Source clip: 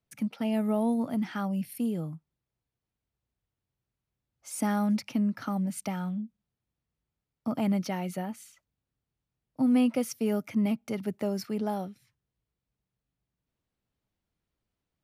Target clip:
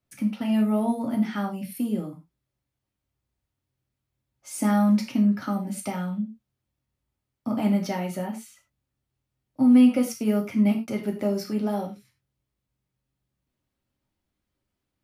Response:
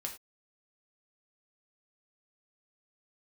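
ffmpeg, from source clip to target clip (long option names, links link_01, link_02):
-filter_complex "[0:a]equalizer=frequency=250:width=1.5:gain=2.5[link_01];[1:a]atrim=start_sample=2205[link_02];[link_01][link_02]afir=irnorm=-1:irlink=0,volume=4dB"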